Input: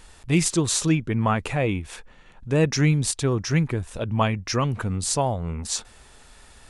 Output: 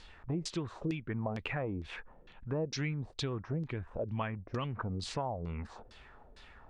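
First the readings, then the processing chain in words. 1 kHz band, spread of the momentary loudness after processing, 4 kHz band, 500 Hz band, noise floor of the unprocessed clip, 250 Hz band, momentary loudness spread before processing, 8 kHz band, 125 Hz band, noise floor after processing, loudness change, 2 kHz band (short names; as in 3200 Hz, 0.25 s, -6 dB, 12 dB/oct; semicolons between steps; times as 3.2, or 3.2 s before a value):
-13.0 dB, 14 LU, -13.0 dB, -12.0 dB, -51 dBFS, -14.0 dB, 9 LU, -24.5 dB, -14.0 dB, -57 dBFS, -14.0 dB, -12.5 dB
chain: LFO low-pass saw down 2.2 Hz 390–4900 Hz; compressor 4:1, threshold -27 dBFS, peak gain reduction 13 dB; gain -6.5 dB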